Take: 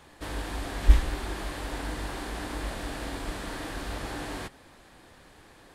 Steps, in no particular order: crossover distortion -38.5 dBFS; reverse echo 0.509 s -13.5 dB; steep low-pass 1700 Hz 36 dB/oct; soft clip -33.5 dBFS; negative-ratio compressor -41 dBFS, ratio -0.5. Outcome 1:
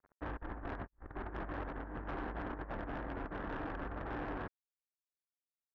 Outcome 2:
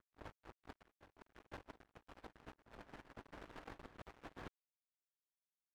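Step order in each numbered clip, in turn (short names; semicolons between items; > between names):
reverse echo > crossover distortion > negative-ratio compressor > steep low-pass > soft clip; steep low-pass > soft clip > negative-ratio compressor > crossover distortion > reverse echo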